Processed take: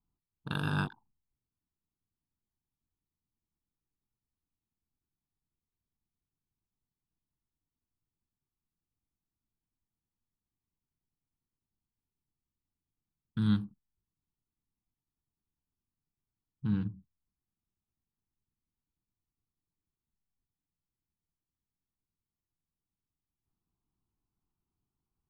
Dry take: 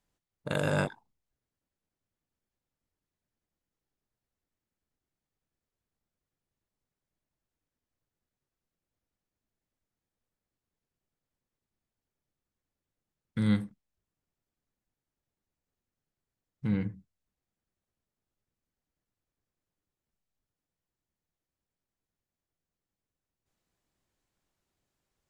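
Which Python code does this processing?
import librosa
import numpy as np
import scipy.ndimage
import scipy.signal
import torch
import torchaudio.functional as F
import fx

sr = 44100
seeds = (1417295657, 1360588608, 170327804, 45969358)

y = fx.wiener(x, sr, points=25)
y = fx.fixed_phaser(y, sr, hz=2100.0, stages=6)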